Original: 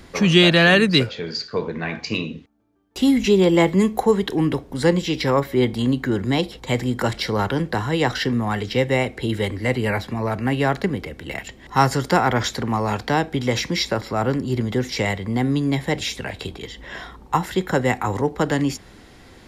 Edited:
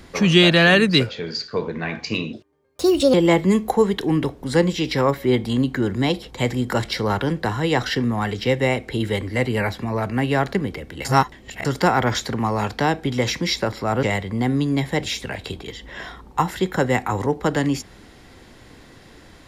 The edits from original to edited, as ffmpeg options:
ffmpeg -i in.wav -filter_complex "[0:a]asplit=6[link_01][link_02][link_03][link_04][link_05][link_06];[link_01]atrim=end=2.334[link_07];[link_02]atrim=start=2.33:end=3.43,asetpts=PTS-STARTPTS,asetrate=59976,aresample=44100,atrim=end_sample=35669,asetpts=PTS-STARTPTS[link_08];[link_03]atrim=start=3.426:end=11.342[link_09];[link_04]atrim=start=11.338:end=11.942,asetpts=PTS-STARTPTS,areverse[link_10];[link_05]atrim=start=11.938:end=14.322[link_11];[link_06]atrim=start=14.978[link_12];[link_07][link_08]acrossfade=duration=0.004:curve1=hsin:curve2=hsin[link_13];[link_13][link_09]acrossfade=duration=0.004:curve1=hsin:curve2=hsin[link_14];[link_14][link_10]acrossfade=duration=0.004:curve1=hsin:curve2=hsin[link_15];[link_15][link_11]acrossfade=duration=0.004:curve1=hsin:curve2=hsin[link_16];[link_16][link_12]acrossfade=duration=0.004:curve1=hsin:curve2=hsin" out.wav

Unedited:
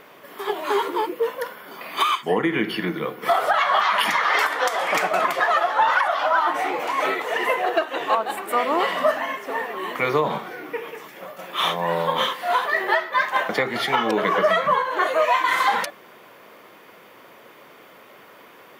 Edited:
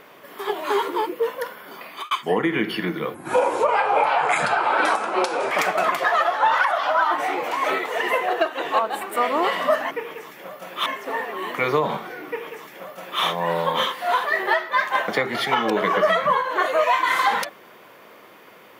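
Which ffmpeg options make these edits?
ffmpeg -i in.wav -filter_complex "[0:a]asplit=6[link_01][link_02][link_03][link_04][link_05][link_06];[link_01]atrim=end=2.11,asetpts=PTS-STARTPTS,afade=type=out:start_time=1.75:duration=0.36[link_07];[link_02]atrim=start=2.11:end=3.144,asetpts=PTS-STARTPTS,afade=type=in:duration=0.004:curve=hsin[link_08];[link_03]atrim=start=3.14:end=4.87,asetpts=PTS-STARTPTS,asetrate=32193,aresample=44100[link_09];[link_04]atrim=start=4.866:end=9.272[link_10];[link_05]atrim=start=10.678:end=11.632[link_11];[link_06]atrim=start=9.268[link_12];[link_07][link_08]concat=n=2:v=0:a=1[link_13];[link_13][link_09]acrossfade=duration=0.004:curve1=hsin:curve2=hsin[link_14];[link_14][link_10]acrossfade=duration=0.004:curve1=hsin:curve2=hsin[link_15];[link_15][link_11]acrossfade=duration=0.004:curve1=hsin:curve2=hsin[link_16];[link_16][link_12]acrossfade=duration=0.004:curve1=hsin:curve2=hsin" out.wav

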